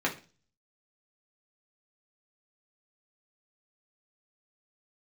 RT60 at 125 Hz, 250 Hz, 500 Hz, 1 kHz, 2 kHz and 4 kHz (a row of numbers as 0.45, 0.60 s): 0.60, 0.45, 0.35, 0.35, 0.35, 0.40 s